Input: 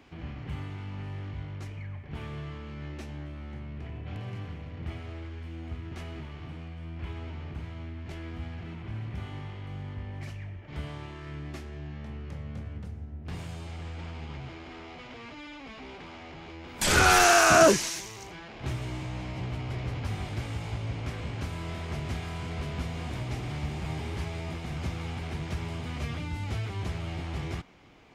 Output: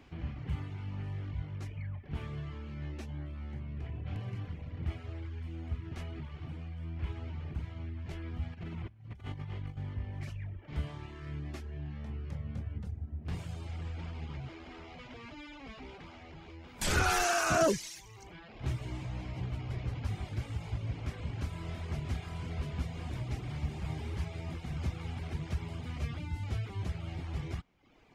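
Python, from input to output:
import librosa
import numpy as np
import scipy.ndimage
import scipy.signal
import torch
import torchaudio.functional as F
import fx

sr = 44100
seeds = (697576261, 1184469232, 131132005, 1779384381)

y = fx.over_compress(x, sr, threshold_db=-40.0, ratio=-0.5, at=(8.53, 9.77))
y = fx.dereverb_blind(y, sr, rt60_s=0.78)
y = fx.low_shelf(y, sr, hz=150.0, db=7.5)
y = fx.rider(y, sr, range_db=4, speed_s=2.0)
y = y * librosa.db_to_amplitude(-7.0)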